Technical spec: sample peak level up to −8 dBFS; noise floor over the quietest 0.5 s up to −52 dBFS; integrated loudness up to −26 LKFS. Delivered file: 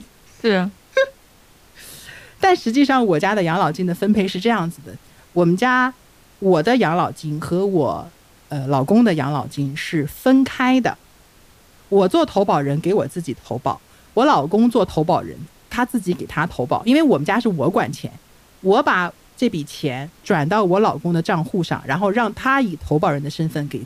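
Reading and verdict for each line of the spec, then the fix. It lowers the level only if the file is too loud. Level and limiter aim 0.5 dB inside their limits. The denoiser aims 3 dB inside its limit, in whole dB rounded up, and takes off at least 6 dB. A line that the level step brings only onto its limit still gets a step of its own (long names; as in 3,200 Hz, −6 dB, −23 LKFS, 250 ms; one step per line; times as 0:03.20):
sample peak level −5.5 dBFS: out of spec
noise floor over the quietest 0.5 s −50 dBFS: out of spec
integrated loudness −19.0 LKFS: out of spec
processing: level −7.5 dB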